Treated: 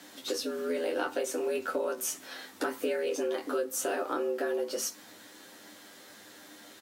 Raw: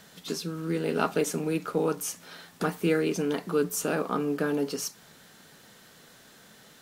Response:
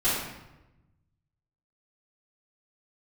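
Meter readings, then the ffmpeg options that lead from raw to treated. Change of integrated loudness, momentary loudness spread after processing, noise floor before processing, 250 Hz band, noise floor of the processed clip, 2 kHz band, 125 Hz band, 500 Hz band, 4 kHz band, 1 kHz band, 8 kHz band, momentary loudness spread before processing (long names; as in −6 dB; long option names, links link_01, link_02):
−3.5 dB, 19 LU, −55 dBFS, −8.5 dB, −53 dBFS, −2.5 dB, below −25 dB, −2.0 dB, −1.0 dB, −3.0 dB, −1.0 dB, 8 LU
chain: -af "afreqshift=90,aecho=1:1:10|23:0.668|0.473,acompressor=threshold=-28dB:ratio=6"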